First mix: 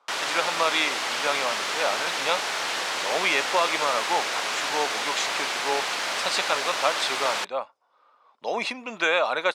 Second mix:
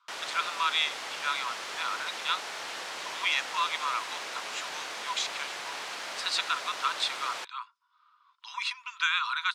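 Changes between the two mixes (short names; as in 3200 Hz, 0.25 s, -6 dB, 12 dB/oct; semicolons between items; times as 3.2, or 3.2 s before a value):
speech: add rippled Chebyshev high-pass 960 Hz, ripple 6 dB; background -10.0 dB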